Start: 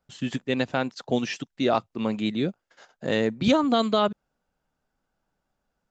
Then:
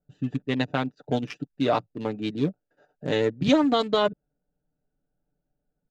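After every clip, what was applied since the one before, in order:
adaptive Wiener filter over 41 samples
comb filter 6.8 ms, depth 57%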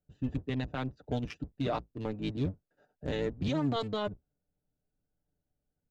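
sub-octave generator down 1 octave, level −1 dB
brickwall limiter −16 dBFS, peak gain reduction 9.5 dB
level −6.5 dB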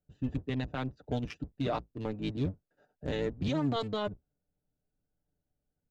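no processing that can be heard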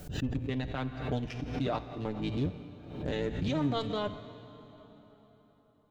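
tuned comb filter 58 Hz, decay 1.8 s, harmonics all, mix 60%
dense smooth reverb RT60 4.5 s, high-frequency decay 0.75×, DRR 13 dB
background raised ahead of every attack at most 68 dB per second
level +7 dB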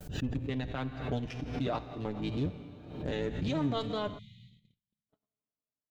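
tape wow and flutter 26 cents
time-frequency box erased 0:04.18–0:05.09, 220–1,900 Hz
noise gate −54 dBFS, range −36 dB
level −1 dB

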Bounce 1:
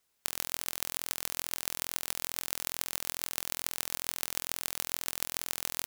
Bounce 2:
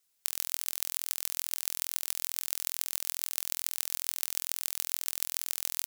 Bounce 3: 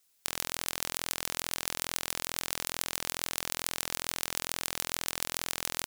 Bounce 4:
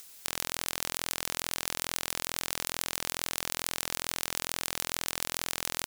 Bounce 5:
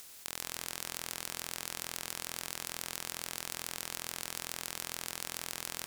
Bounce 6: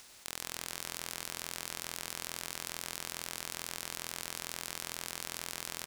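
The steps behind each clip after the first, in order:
high-shelf EQ 2,700 Hz +11.5 dB; level −8.5 dB
wrap-around overflow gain 10 dB; floating-point word with a short mantissa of 2 bits; level +4.5 dB
in parallel at −1.5 dB: brickwall limiter −14 dBFS, peak gain reduction 10 dB; on the sum: upward compression, threshold −34 dBFS; level −2.5 dB
compressor on every frequency bin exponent 0.6; on a send at −10.5 dB: convolution reverb RT60 1.7 s, pre-delay 120 ms; on the sum: level −8 dB
running median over 3 samples; single-tap delay 439 ms −13.5 dB

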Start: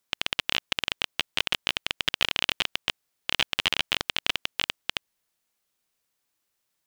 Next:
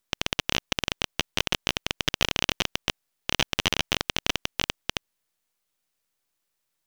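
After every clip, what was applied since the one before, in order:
gain on one half-wave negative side −12 dB
level +2 dB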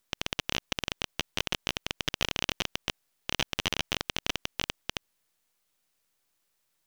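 boost into a limiter +10.5 dB
level −7.5 dB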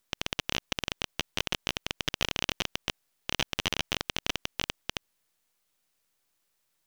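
no processing that can be heard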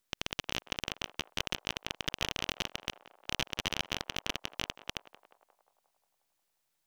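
feedback echo with a band-pass in the loop 178 ms, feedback 66%, band-pass 780 Hz, level −12.5 dB
level −4 dB

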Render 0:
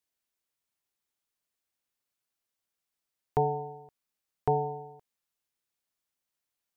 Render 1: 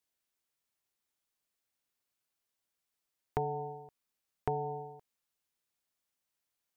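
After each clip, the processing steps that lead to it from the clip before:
downward compressor 4 to 1, threshold −31 dBFS, peak gain reduction 8.5 dB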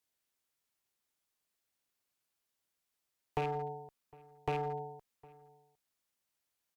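loose part that buzzes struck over −38 dBFS, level −33 dBFS
asymmetric clip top −34.5 dBFS
slap from a distant wall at 130 metres, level −23 dB
level +1 dB

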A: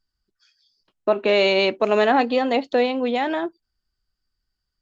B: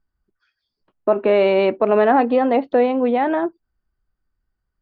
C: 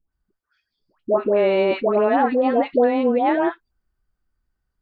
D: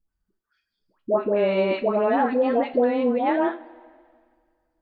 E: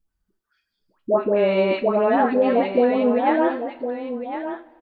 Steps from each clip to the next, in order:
low-pass filter 1,500 Hz 12 dB per octave; in parallel at −2.5 dB: brickwall limiter −14.5 dBFS, peak gain reduction 8 dB
speech leveller 0.5 s; all-pass dispersion highs, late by 123 ms, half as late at 970 Hz; level −1 dB
coupled-rooms reverb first 0.28 s, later 2 s, from −18 dB, DRR 7.5 dB; level −3.5 dB
single-tap delay 1,059 ms −9.5 dB; level +2.5 dB

